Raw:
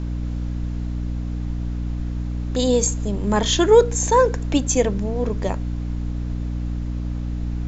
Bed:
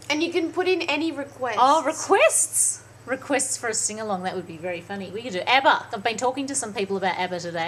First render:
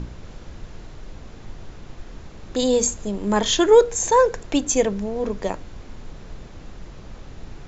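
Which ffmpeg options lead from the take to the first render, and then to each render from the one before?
-af "bandreject=f=60:t=h:w=6,bandreject=f=120:t=h:w=6,bandreject=f=180:t=h:w=6,bandreject=f=240:t=h:w=6,bandreject=f=300:t=h:w=6"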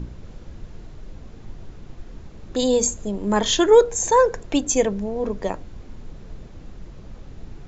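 -af "afftdn=nr=6:nf=-41"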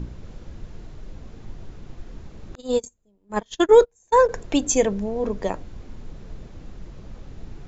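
-filter_complex "[0:a]asettb=1/sr,asplit=3[s0][s1][s2];[s0]atrim=end=2.554[s3];[s1]atrim=start=2.55:end=4.29,asetpts=PTS-STARTPTS,afade=t=in:d=0.004:c=qsin,afade=t=out:st=1.736:d=0.004:c=qsin,agate=range=0.0158:threshold=0.126:ratio=16:release=100:detection=peak[s4];[s2]atrim=start=4.286[s5];[s3][s4]acrossfade=d=0.004:c1=hsin:c2=qsin[s6];[s6][s5]acrossfade=d=0.004:c1=qsin:c2=hsin"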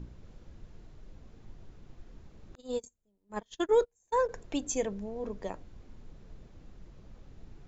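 -af "volume=0.251"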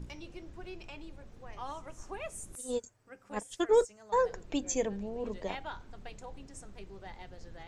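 -filter_complex "[1:a]volume=0.0596[s0];[0:a][s0]amix=inputs=2:normalize=0"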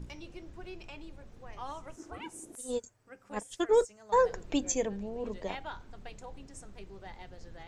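-filter_complex "[0:a]asettb=1/sr,asplit=3[s0][s1][s2];[s0]atrim=end=1.964[s3];[s1]atrim=start=1.96:end=2.58,asetpts=PTS-STARTPTS,afade=t=in:d=0.004:c=qsin,afade=t=out:st=0.616:d=0.004:c=qsin,aeval=exprs='val(0)*sin(2*PI*320*n/s)':c=same[s4];[s2]atrim=start=2.576[s5];[s3][s4]acrossfade=d=0.004:c1=hsin:c2=qsin[s6];[s6][s5]acrossfade=d=0.004:c1=qsin:c2=hsin,asplit=3[s7][s8][s9];[s7]atrim=end=4.092[s10];[s8]atrim=start=4.088:end=4.722,asetpts=PTS-STARTPTS,volume=1.41[s11];[s9]atrim=start=4.718[s12];[s10][s11]acrossfade=d=0.004:c1=hsin:c2=hsin[s13];[s13][s12]acrossfade=d=0.004:c1=hsin:c2=hsin"

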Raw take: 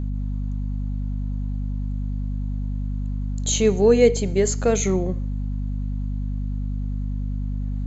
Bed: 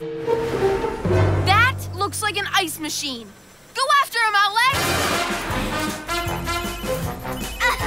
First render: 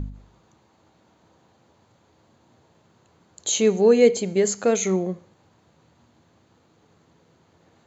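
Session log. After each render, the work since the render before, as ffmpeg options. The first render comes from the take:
-af "bandreject=f=50:t=h:w=4,bandreject=f=100:t=h:w=4,bandreject=f=150:t=h:w=4,bandreject=f=200:t=h:w=4,bandreject=f=250:t=h:w=4"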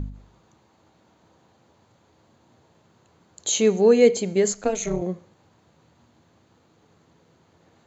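-filter_complex "[0:a]asettb=1/sr,asplit=3[s0][s1][s2];[s0]atrim=end=4.524[s3];[s1]atrim=start=4.52:end=5.02,asetpts=PTS-STARTPTS,afade=t=in:d=0.004:c=qsin,afade=t=out:st=0.496:d=0.004:c=qsin,tremolo=f=220:d=0.919[s4];[s2]atrim=start=5.016[s5];[s3][s4]acrossfade=d=0.004:c1=hsin:c2=qsin[s6];[s6][s5]acrossfade=d=0.004:c1=qsin:c2=hsin"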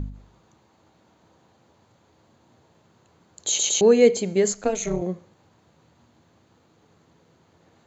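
-filter_complex "[0:a]asplit=4[s0][s1][s2][s3];[s0]atrim=end=3.592[s4];[s1]atrim=start=3.478:end=3.592[s5];[s2]atrim=start=3.478:end=3.592[s6];[s3]atrim=start=3.808[s7];[s4][s5]acrossfade=d=0.004:c1=hsin:c2=hsin[s8];[s8][s6]acrossfade=d=0.004:c1=hsin:c2=hsin[s9];[s9][s7]acrossfade=d=0.004:c1=hsin:c2=hsin"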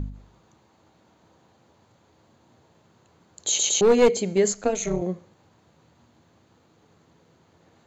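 -filter_complex "[0:a]asplit=3[s0][s1][s2];[s0]afade=t=out:st=3.81:d=0.02[s3];[s1]aeval=exprs='clip(val(0),-1,0.168)':c=same,afade=t=in:st=3.81:d=0.02,afade=t=out:st=4.37:d=0.02[s4];[s2]afade=t=in:st=4.37:d=0.02[s5];[s3][s4][s5]amix=inputs=3:normalize=0"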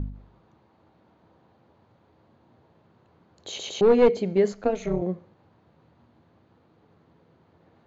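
-af "lowpass=f=5200:w=0.5412,lowpass=f=5200:w=1.3066,highshelf=f=2700:g=-11.5"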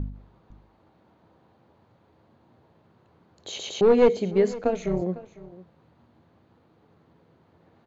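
-af "aecho=1:1:503:0.119"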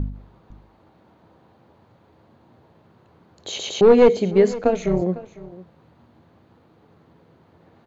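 -af "volume=1.88,alimiter=limit=0.794:level=0:latency=1"

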